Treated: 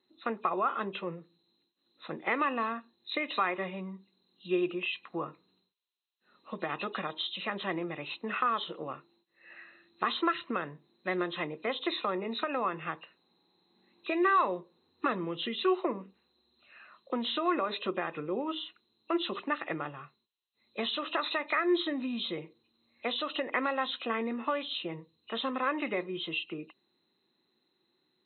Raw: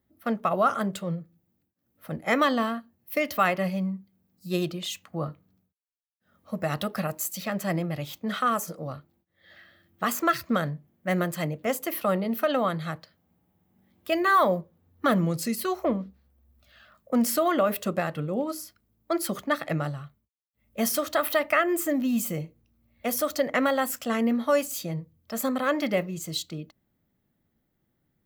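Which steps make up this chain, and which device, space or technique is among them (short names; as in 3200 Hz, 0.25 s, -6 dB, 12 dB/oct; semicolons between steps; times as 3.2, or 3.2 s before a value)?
hearing aid with frequency lowering (nonlinear frequency compression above 2400 Hz 4:1; compressor 2.5:1, threshold -30 dBFS, peak gain reduction 9 dB; speaker cabinet 310–6900 Hz, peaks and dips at 370 Hz +9 dB, 620 Hz -7 dB, 1000 Hz +8 dB, 2000 Hz +3 dB, 3500 Hz -5 dB, 5100 Hz -8 dB)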